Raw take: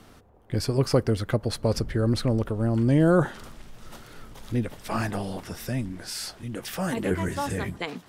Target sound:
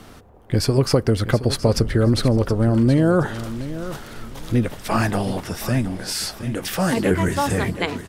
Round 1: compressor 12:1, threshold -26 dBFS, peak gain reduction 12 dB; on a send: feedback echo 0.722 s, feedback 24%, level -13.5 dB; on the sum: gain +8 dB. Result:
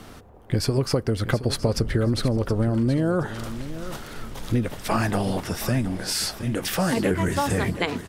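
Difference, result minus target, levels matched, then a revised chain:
compressor: peak gain reduction +6 dB
compressor 12:1, threshold -19.5 dBFS, peak gain reduction 6 dB; on a send: feedback echo 0.722 s, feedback 24%, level -13.5 dB; on the sum: gain +8 dB

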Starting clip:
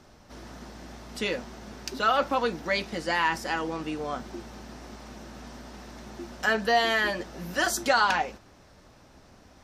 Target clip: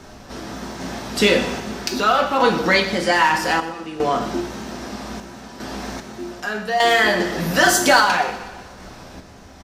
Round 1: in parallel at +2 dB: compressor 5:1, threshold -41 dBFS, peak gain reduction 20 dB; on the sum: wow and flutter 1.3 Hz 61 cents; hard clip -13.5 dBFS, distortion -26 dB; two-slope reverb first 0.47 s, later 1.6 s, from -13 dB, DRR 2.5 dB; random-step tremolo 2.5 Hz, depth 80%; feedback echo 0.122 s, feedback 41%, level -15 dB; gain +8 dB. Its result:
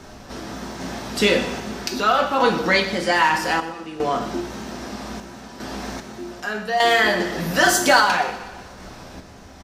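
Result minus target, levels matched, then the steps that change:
compressor: peak gain reduction +7 dB
change: compressor 5:1, threshold -32.5 dBFS, peak gain reduction 13 dB

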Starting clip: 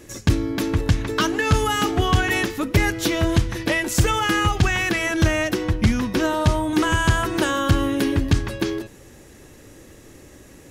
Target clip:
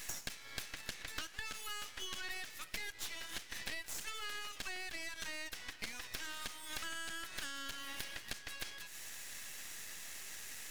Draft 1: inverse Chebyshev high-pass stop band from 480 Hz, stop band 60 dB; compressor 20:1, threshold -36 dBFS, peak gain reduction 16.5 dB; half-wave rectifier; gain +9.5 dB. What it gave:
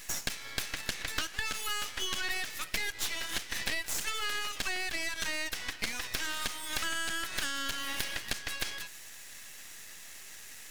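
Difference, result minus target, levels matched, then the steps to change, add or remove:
compressor: peak gain reduction -9.5 dB
change: compressor 20:1, threshold -46 dBFS, peak gain reduction 26 dB

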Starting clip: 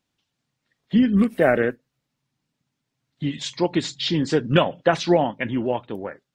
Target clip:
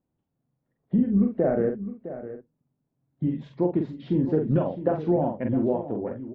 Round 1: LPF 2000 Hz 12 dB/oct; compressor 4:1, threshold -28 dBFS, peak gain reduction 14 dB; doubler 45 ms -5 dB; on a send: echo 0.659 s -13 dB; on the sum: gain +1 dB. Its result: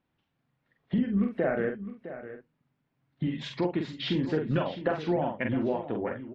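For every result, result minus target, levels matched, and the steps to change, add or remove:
2000 Hz band +14.0 dB; compressor: peak gain reduction +6 dB
change: LPF 640 Hz 12 dB/oct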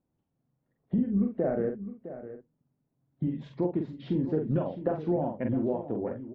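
compressor: peak gain reduction +5 dB
change: compressor 4:1, threshold -21 dBFS, peak gain reduction 7.5 dB

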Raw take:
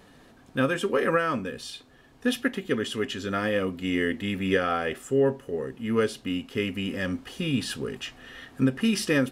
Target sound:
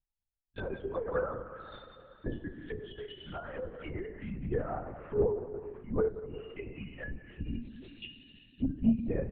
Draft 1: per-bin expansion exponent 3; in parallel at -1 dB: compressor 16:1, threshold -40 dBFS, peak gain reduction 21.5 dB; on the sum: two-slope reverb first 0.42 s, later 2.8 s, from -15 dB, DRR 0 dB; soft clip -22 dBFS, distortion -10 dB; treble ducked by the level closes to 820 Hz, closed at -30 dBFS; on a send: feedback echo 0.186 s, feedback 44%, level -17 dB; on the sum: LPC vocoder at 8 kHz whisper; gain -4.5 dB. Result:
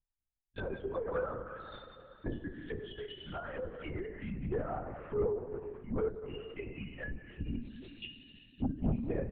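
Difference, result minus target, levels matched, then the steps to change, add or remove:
soft clip: distortion +15 dB
change: soft clip -10.5 dBFS, distortion -25 dB

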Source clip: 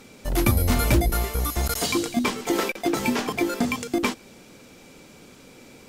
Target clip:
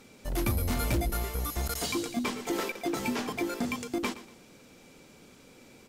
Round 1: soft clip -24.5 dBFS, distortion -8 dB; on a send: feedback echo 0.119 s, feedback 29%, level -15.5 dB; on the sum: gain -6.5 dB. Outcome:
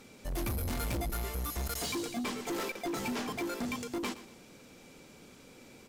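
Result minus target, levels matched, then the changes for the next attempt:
soft clip: distortion +10 dB
change: soft clip -14 dBFS, distortion -18 dB

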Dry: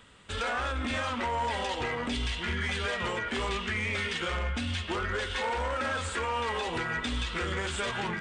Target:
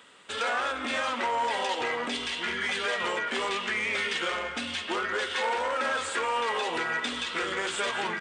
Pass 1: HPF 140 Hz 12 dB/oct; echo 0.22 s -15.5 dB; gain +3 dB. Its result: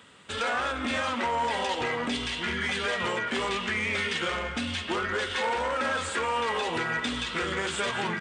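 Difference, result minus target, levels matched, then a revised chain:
125 Hz band +11.0 dB
HPF 320 Hz 12 dB/oct; echo 0.22 s -15.5 dB; gain +3 dB

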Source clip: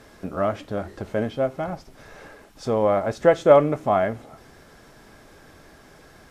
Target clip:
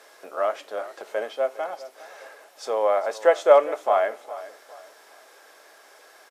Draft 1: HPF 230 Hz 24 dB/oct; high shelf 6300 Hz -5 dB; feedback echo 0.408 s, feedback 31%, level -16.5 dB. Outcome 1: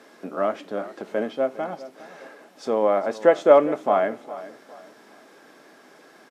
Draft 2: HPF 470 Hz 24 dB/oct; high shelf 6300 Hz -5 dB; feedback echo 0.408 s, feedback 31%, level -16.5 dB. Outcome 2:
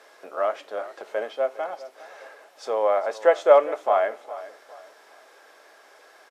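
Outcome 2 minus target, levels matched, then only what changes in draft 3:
8000 Hz band -5.0 dB
change: high shelf 6300 Hz +4 dB

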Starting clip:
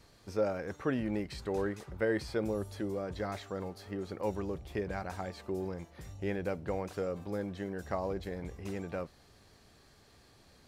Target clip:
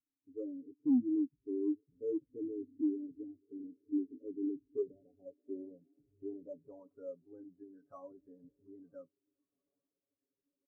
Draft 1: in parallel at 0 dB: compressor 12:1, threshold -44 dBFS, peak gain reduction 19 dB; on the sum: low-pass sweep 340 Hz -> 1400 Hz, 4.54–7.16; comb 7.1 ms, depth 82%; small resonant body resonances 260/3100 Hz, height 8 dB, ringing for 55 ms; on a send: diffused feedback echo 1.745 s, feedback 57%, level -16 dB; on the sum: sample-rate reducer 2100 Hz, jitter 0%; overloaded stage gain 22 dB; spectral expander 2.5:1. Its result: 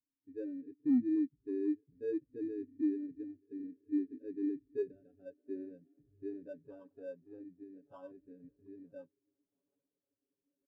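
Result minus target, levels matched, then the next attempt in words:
compressor: peak gain reduction -7.5 dB; sample-rate reducer: distortion +10 dB
in parallel at 0 dB: compressor 12:1, threshold -52 dBFS, peak gain reduction 26 dB; on the sum: low-pass sweep 340 Hz -> 1400 Hz, 4.54–7.16; comb 7.1 ms, depth 82%; small resonant body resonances 260/3100 Hz, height 8 dB, ringing for 55 ms; on a send: diffused feedback echo 1.745 s, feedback 57%, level -16 dB; on the sum: sample-rate reducer 7000 Hz, jitter 0%; overloaded stage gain 22 dB; spectral expander 2.5:1

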